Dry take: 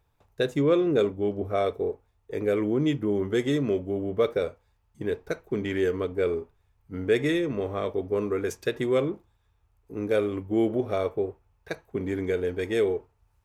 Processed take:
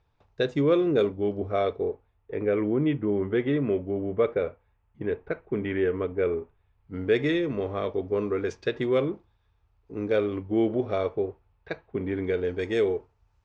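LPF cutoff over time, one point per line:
LPF 24 dB/oct
1.41 s 5500 Hz
2.34 s 2800 Hz
6.4 s 2800 Hz
7.14 s 5100 Hz
11.12 s 5100 Hz
12.1 s 3400 Hz
12.63 s 6500 Hz

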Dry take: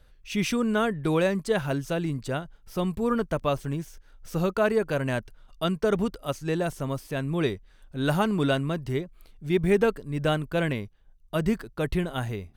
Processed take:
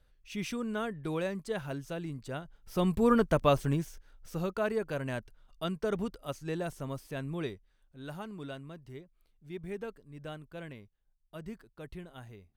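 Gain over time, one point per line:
2.27 s -10 dB
2.95 s +1 dB
3.72 s +1 dB
4.38 s -8 dB
7.27 s -8 dB
7.96 s -18 dB

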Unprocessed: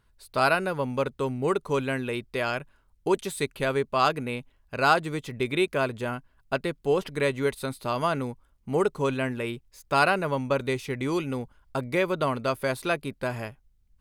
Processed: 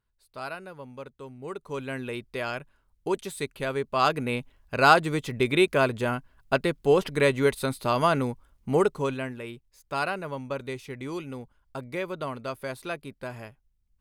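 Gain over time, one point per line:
1.34 s -14 dB
2.03 s -3.5 dB
3.75 s -3.5 dB
4.35 s +3.5 dB
8.7 s +3.5 dB
9.39 s -7 dB

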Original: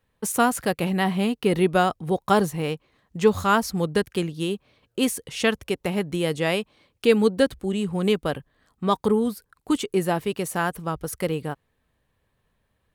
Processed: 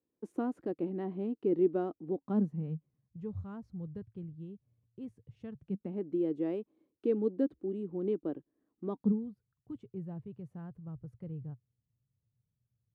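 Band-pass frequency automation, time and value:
band-pass, Q 5.2
2.04 s 320 Hz
3.19 s 110 Hz
5.47 s 110 Hz
6 s 320 Hz
8.87 s 320 Hz
9.3 s 120 Hz

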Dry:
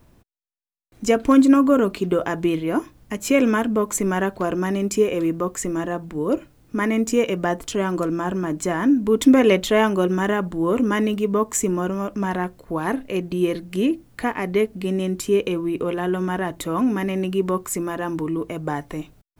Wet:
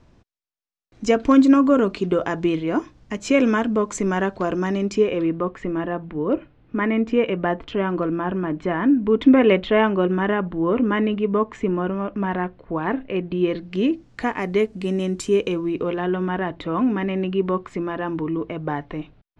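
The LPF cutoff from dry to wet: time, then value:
LPF 24 dB/oct
4.73 s 6400 Hz
5.47 s 3200 Hz
13.21 s 3200 Hz
14.34 s 8100 Hz
15.4 s 8100 Hz
16.19 s 3700 Hz

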